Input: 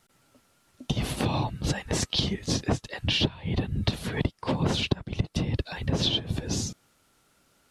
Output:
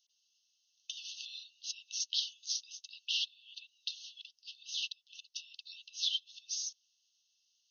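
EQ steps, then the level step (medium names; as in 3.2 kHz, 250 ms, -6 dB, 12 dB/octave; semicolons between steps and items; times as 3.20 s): brick-wall FIR band-pass 2.6–6.6 kHz; differentiator; 0.0 dB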